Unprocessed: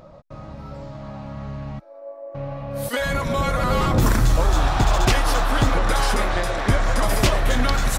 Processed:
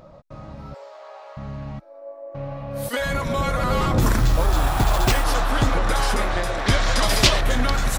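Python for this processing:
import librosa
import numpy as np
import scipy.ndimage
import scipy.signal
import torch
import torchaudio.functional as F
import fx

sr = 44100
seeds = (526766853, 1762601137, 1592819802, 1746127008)

y = fx.steep_highpass(x, sr, hz=390.0, slope=72, at=(0.74, 1.37))
y = fx.resample_bad(y, sr, factor=4, down='none', up='hold', at=(4.17, 5.24))
y = fx.peak_eq(y, sr, hz=4200.0, db=11.0, octaves=1.7, at=(6.66, 7.41))
y = F.gain(torch.from_numpy(y), -1.0).numpy()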